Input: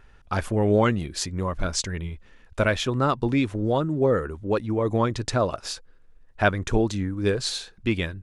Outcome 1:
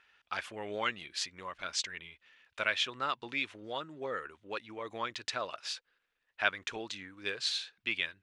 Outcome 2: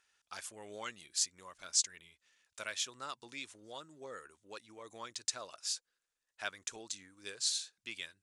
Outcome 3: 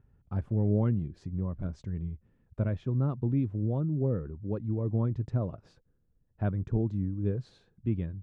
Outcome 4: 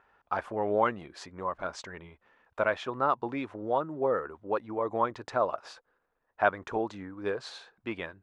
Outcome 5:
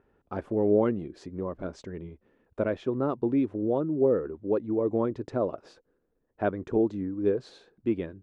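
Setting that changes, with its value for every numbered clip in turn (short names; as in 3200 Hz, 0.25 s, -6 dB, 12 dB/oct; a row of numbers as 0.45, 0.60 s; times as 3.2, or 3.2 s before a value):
band-pass, frequency: 2800, 7500, 130, 920, 360 Hz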